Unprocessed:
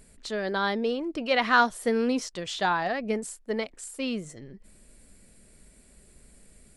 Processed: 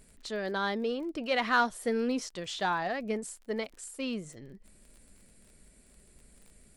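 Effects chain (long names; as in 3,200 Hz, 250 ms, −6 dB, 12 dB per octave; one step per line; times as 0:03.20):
in parallel at −8 dB: soft clipping −23.5 dBFS, distortion −9 dB
on the sum: surface crackle 34 per second −39 dBFS
level −6.5 dB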